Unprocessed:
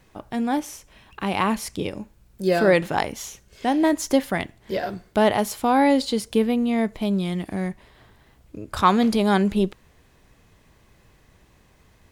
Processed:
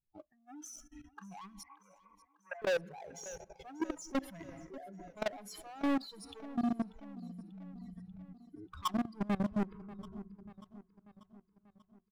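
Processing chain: spectral contrast raised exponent 2.5; sample leveller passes 1; soft clip -21 dBFS, distortion -9 dB; on a send at -15 dB: reverb RT60 3.5 s, pre-delay 4 ms; on the sum: level quantiser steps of 22 dB; spectral noise reduction 23 dB; 1.63–2.62 Chebyshev band-pass 650–2500 Hz, order 4; feedback echo 0.589 s, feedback 56%, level -19.5 dB; overloaded stage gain 24.5 dB; gain -4 dB

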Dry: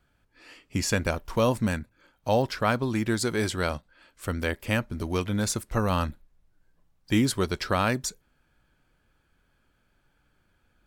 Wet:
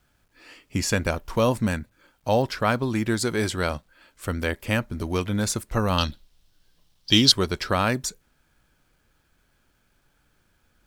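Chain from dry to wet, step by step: 5.98–7.32 band shelf 4100 Hz +16 dB 1.3 oct; bit-crush 12-bit; gain +2 dB

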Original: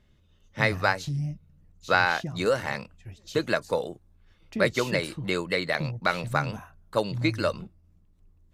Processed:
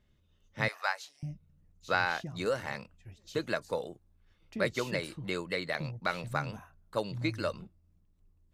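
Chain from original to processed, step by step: 0.68–1.23 HPF 690 Hz 24 dB/oct; gain -7 dB

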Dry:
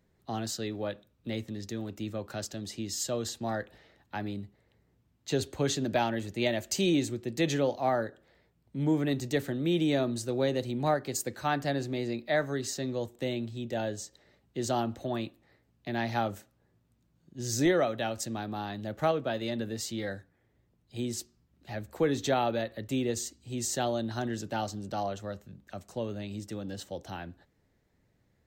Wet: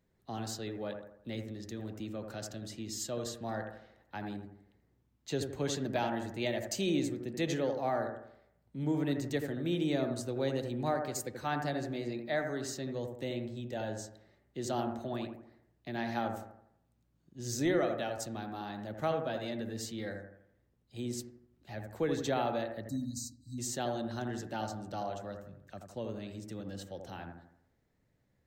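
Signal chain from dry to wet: spectral delete 22.82–23.58, 320–3800 Hz; analogue delay 82 ms, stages 1024, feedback 45%, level -5.5 dB; gain -5.5 dB

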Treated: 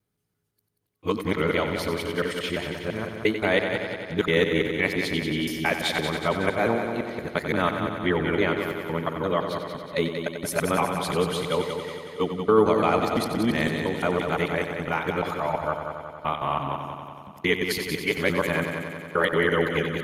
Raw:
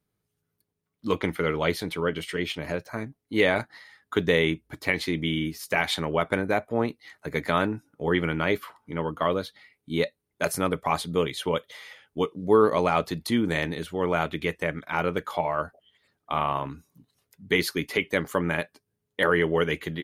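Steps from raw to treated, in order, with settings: local time reversal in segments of 0.171 s; multi-head echo 92 ms, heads first and second, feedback 65%, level -9.5 dB

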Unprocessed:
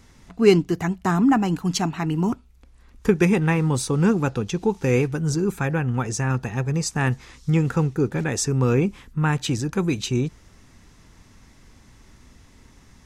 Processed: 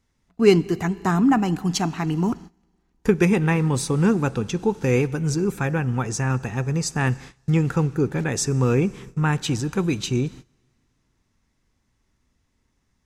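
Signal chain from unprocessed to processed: Schroeder reverb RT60 3 s, combs from 31 ms, DRR 19.5 dB; gate -38 dBFS, range -19 dB

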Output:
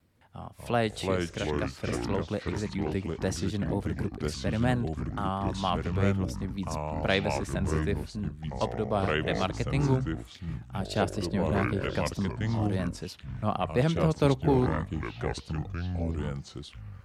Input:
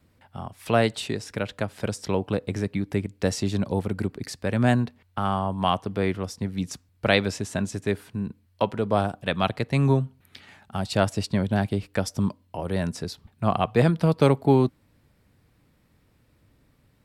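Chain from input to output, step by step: vibrato 4.3 Hz 53 cents; echoes that change speed 0.15 s, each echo -4 st, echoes 3; gain -6 dB

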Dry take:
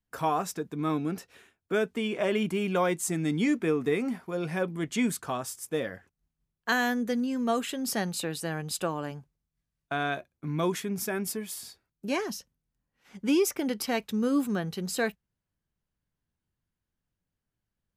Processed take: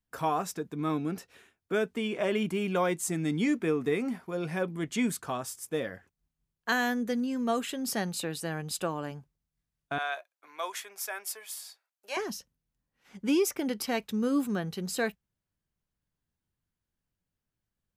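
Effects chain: 9.98–12.17 HPF 620 Hz 24 dB/oct; gain -1.5 dB

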